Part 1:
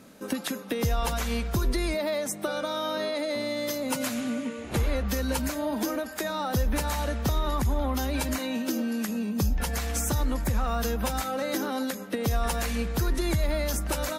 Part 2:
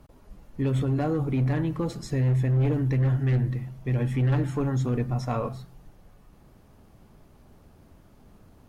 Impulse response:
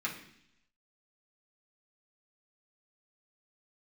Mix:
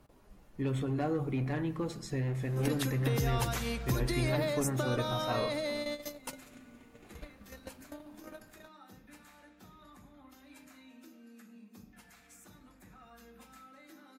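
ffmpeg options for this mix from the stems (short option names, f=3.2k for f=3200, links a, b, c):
-filter_complex "[0:a]adelay=2350,volume=-4.5dB,asplit=2[a][b];[b]volume=-24dB[c];[1:a]volume=-5dB,asplit=3[d][e][f];[e]volume=-14dB[g];[f]apad=whole_len=733600[h];[a][h]sidechaingate=range=-33dB:threshold=-54dB:ratio=16:detection=peak[i];[2:a]atrim=start_sample=2205[j];[c][g]amix=inputs=2:normalize=0[k];[k][j]afir=irnorm=-1:irlink=0[l];[i][d][l]amix=inputs=3:normalize=0,lowshelf=f=200:g=-5"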